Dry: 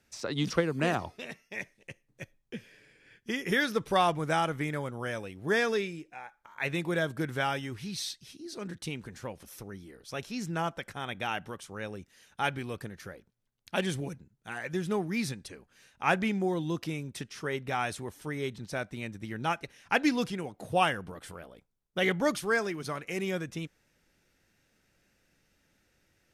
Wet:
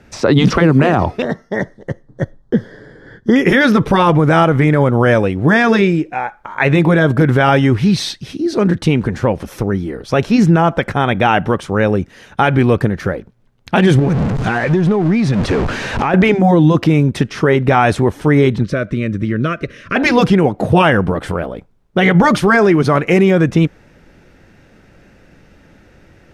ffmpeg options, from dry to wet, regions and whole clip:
-filter_complex "[0:a]asettb=1/sr,asplit=3[a][b][c];[a]atrim=end=1.224[d];[b]atrim=start=1.22:end=3.36,asetpts=PTS-STARTPTS,afade=t=in:d=0.004:c=qsin,afade=t=out:st=2.136:d=0.004:c=qsin,asuperstop=centerf=2500:order=4:qfactor=1.5,highshelf=f=6.8k:g=-11[e];[c]atrim=start=3.356[f];[d][e]acrossfade=d=0.004:c1=hsin:c2=qsin[g];[g][f]acrossfade=d=0.004:c1=qsin:c2=hsin,asettb=1/sr,asplit=3[h][i][j];[h]atrim=end=13.994[k];[i]atrim=start=13.99:end=16.14,asetpts=PTS-STARTPTS,afade=t=in:d=0.004:c=qsin,afade=t=out:st=2.146:d=0.004:c=qsin,aeval=exprs='val(0)+0.5*0.0141*sgn(val(0))':c=same,lowpass=7.6k,acompressor=threshold=-36dB:ratio=10:attack=3.2:release=140:knee=1:detection=peak[l];[j]atrim=start=16.136[m];[k][l]acrossfade=d=0.004:c1=hsin:c2=qsin[n];[n][m]acrossfade=d=0.004:c1=qsin:c2=hsin,asettb=1/sr,asplit=3[o][p][q];[o]atrim=end=18.634[r];[p]atrim=start=18.63:end=19.96,asetpts=PTS-STARTPTS,afade=t=in:d=0.004:c=qsin,afade=t=out:st=1.326:d=0.004:c=qsin,acompressor=threshold=-43dB:ratio=2:attack=3.2:release=140:knee=1:detection=peak,asuperstop=centerf=830:order=8:qfactor=2,highshelf=f=9.2k:g=-8.5[s];[q]atrim=start=19.956[t];[r][s]acrossfade=d=0.004:c1=hsin:c2=qsin[u];[u][t]acrossfade=d=0.004:c1=qsin:c2=hsin,lowpass=f=1k:p=1,afftfilt=real='re*lt(hypot(re,im),0.282)':imag='im*lt(hypot(re,im),0.282)':win_size=1024:overlap=0.75,alimiter=level_in=28dB:limit=-1dB:release=50:level=0:latency=1,volume=-1dB"

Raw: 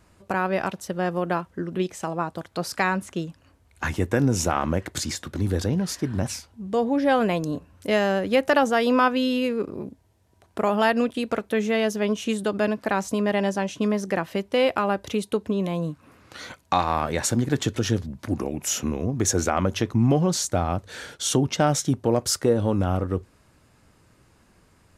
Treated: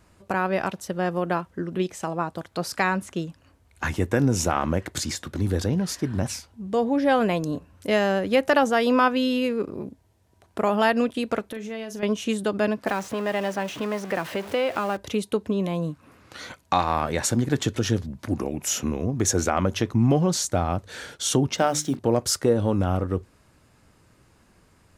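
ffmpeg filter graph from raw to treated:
-filter_complex "[0:a]asettb=1/sr,asplit=3[a][b][c];[a]atrim=end=11.484[d];[b]atrim=start=11.48:end=12.03,asetpts=PTS-STARTPTS,afade=t=in:d=0.004:c=qsin,afade=t=out:st=0.546:d=0.004:c=qsin,acompressor=threshold=-30dB:ratio=10:attack=3.2:release=140:knee=1:detection=peak,asplit=2[e][f];[f]adelay=40,volume=-12dB[g];[e][g]amix=inputs=2:normalize=0,atrim=end_sample=24255[h];[c]atrim=start=12.026[i];[d][h]acrossfade=d=0.004:c1=hsin:c2=qsin[j];[j][i]acrossfade=d=0.004:c1=qsin:c2=hsin,asettb=1/sr,asplit=3[k][l][m];[k]atrim=end=12.874[n];[l]atrim=start=12.87:end=14.97,asetpts=PTS-STARTPTS,afade=t=in:d=0.004:c=qsin,afade=t=out:st=2.096:d=0.004:c=qsin,aeval=exprs='val(0)+0.5*0.0316*sgn(val(0))':c=same,highpass=94,acrossover=split=410|3300[o][p][q];[o]acompressor=threshold=-33dB:ratio=4[r];[p]acompressor=threshold=-23dB:ratio=4[s];[q]acompressor=threshold=-45dB:ratio=4[t];[r][s][t]amix=inputs=3:normalize=0[u];[m]atrim=start=14.966[v];[n][u]acrossfade=d=0.004:c1=hsin:c2=qsin[w];[w][v]acrossfade=d=0.004:c1=qsin:c2=hsin,asettb=1/sr,asplit=3[x][y][z];[x]atrim=end=21.584[aa];[y]atrim=start=21.58:end=21.99,asetpts=PTS-STARTPTS,afade=t=in:d=0.004:c=qsin,afade=t=out:st=0.406:d=0.004:c=qsin,highpass=190,bandreject=f=50:t=h:w=6,bandreject=f=100:t=h:w=6,bandreject=f=150:t=h:w=6,bandreject=f=200:t=h:w=6,bandreject=f=250:t=h:w=6,bandreject=f=300:t=h:w=6,bandreject=f=350:t=h:w=6,acrusher=bits=7:mix=0:aa=0.5[ab];[z]atrim=start=21.986[ac];[aa][ab]acrossfade=d=0.004:c1=hsin:c2=qsin[ad];[ad][ac]acrossfade=d=0.004:c1=qsin:c2=hsin"

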